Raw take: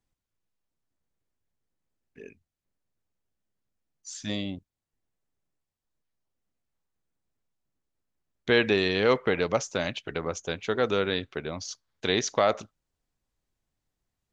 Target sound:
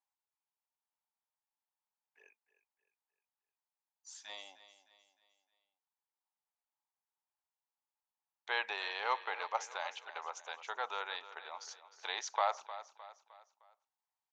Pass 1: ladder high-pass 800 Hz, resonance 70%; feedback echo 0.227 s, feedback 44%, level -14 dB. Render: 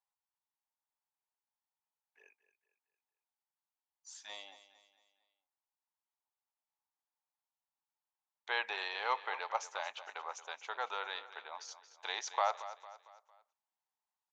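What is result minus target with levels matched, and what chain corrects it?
echo 80 ms early
ladder high-pass 800 Hz, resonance 70%; feedback echo 0.307 s, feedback 44%, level -14 dB

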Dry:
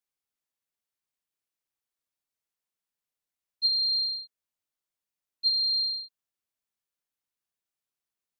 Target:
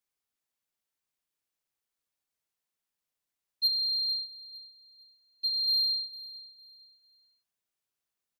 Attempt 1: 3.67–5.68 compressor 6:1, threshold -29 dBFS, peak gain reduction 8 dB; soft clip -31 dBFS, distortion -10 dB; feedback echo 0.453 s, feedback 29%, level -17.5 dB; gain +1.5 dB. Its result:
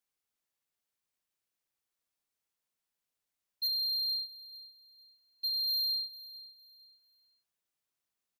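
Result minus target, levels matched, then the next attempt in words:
soft clip: distortion +10 dB
3.67–5.68 compressor 6:1, threshold -29 dBFS, peak gain reduction 8 dB; soft clip -21 dBFS, distortion -20 dB; feedback echo 0.453 s, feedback 29%, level -17.5 dB; gain +1.5 dB

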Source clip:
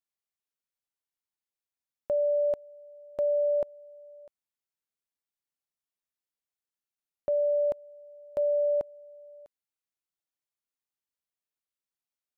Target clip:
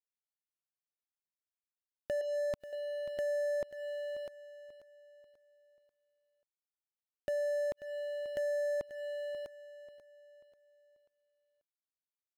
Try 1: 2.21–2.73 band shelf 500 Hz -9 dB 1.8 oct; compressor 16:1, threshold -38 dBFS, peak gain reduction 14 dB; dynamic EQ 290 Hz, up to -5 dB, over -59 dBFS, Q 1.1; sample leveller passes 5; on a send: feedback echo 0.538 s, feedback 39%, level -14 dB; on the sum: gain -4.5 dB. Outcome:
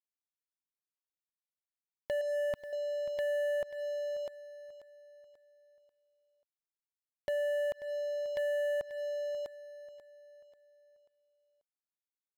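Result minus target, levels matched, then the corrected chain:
250 Hz band -6.0 dB
2.21–2.73 band shelf 500 Hz -9 dB 1.8 oct; compressor 16:1, threshold -38 dBFS, peak gain reduction 14 dB; dynamic EQ 630 Hz, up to -5 dB, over -59 dBFS, Q 1.1; sample leveller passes 5; on a send: feedback echo 0.538 s, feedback 39%, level -14 dB; on the sum: gain -4.5 dB

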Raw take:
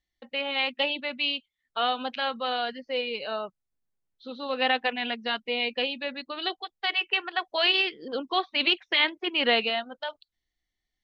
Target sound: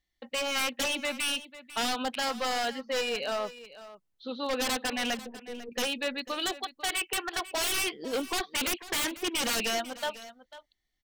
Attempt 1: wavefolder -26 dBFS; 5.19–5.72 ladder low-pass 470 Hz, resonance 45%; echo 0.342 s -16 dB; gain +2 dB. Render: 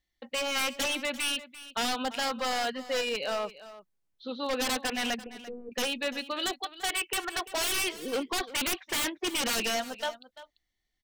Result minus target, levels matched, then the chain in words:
echo 0.154 s early
wavefolder -26 dBFS; 5.19–5.72 ladder low-pass 470 Hz, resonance 45%; echo 0.496 s -16 dB; gain +2 dB

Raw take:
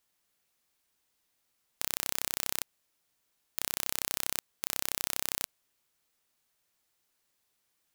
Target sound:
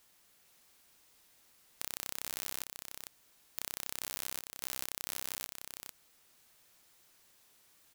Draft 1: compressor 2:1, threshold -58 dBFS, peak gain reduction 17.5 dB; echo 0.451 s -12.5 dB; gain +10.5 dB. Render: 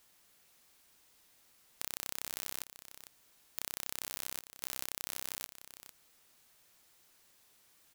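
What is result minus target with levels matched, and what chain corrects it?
echo-to-direct -6.5 dB
compressor 2:1, threshold -58 dBFS, peak gain reduction 17.5 dB; echo 0.451 s -6 dB; gain +10.5 dB

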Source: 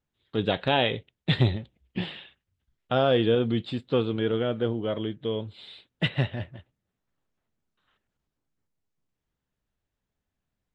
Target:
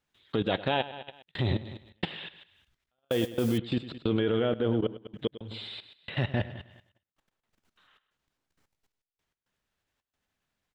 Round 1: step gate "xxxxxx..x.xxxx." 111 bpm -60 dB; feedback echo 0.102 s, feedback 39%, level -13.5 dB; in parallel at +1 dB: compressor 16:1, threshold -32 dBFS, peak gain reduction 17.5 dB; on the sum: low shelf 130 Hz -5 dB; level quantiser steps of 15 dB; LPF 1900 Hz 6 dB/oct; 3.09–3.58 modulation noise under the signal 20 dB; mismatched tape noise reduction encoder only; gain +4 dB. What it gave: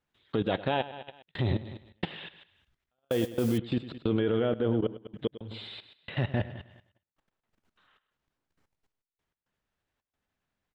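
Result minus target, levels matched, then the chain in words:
4000 Hz band -3.5 dB
step gate "xxxxxx..x.xxxx." 111 bpm -60 dB; feedback echo 0.102 s, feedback 39%, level -13.5 dB; in parallel at +1 dB: compressor 16:1, threshold -32 dBFS, peak gain reduction 17.5 dB; on the sum: low shelf 130 Hz -5 dB; level quantiser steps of 15 dB; LPF 4900 Hz 6 dB/oct; 3.09–3.58 modulation noise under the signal 20 dB; mismatched tape noise reduction encoder only; gain +4 dB

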